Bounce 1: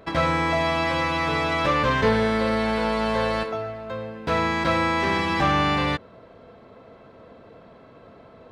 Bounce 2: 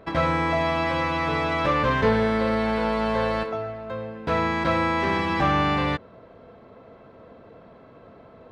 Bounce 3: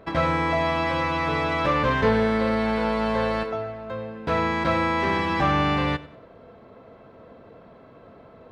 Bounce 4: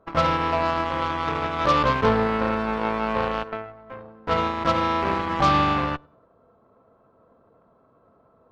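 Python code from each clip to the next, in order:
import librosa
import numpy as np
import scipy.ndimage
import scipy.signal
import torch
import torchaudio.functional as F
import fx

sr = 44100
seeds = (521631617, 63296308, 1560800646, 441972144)

y1 = fx.high_shelf(x, sr, hz=3700.0, db=-8.5)
y2 = fx.echo_feedback(y1, sr, ms=95, feedback_pct=36, wet_db=-19.0)
y3 = fx.high_shelf_res(y2, sr, hz=1600.0, db=-7.0, q=3.0)
y3 = fx.cheby_harmonics(y3, sr, harmonics=(3, 5, 7, 8), levels_db=(-31, -24, -17, -28), full_scale_db=-7.5)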